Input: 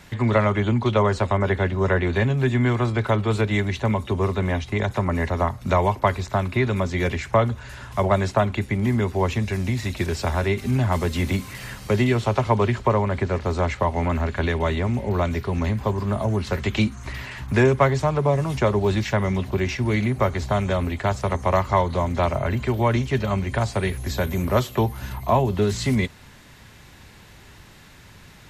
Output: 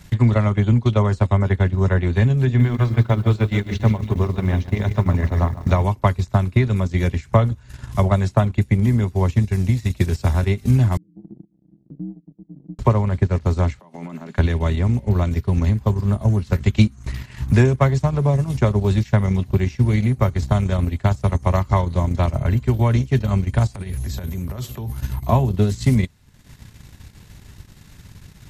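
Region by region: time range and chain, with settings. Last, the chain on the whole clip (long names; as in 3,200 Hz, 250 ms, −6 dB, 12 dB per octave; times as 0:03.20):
0:02.45–0:05.84: low-pass filter 6,300 Hz 24 dB per octave + mains-hum notches 50/100/150/200/250/300/350 Hz + feedback echo at a low word length 143 ms, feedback 55%, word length 8 bits, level −9 dB
0:10.97–0:12.79: downward compressor 3 to 1, threshold −26 dBFS + flat-topped band-pass 250 Hz, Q 4.5 + ring modulation 64 Hz
0:13.79–0:14.38: Butterworth high-pass 150 Hz 72 dB per octave + downward compressor 10 to 1, threshold −29 dBFS
0:23.74–0:24.95: downward compressor 16 to 1, threshold −27 dBFS + transient designer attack −2 dB, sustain +9 dB
whole clip: bass and treble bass +11 dB, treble +7 dB; transient designer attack +5 dB, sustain −12 dB; level −4.5 dB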